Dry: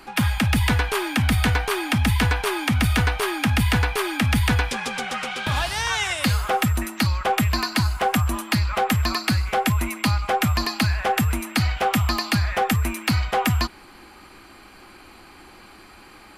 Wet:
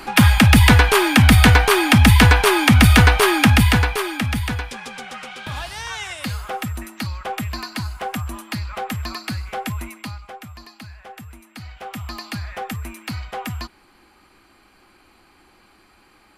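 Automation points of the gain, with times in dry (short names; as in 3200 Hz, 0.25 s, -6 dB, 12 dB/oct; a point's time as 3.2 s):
3.41 s +9 dB
3.89 s +2.5 dB
4.65 s -6 dB
9.8 s -6 dB
10.46 s -18 dB
11.46 s -18 dB
12.21 s -8 dB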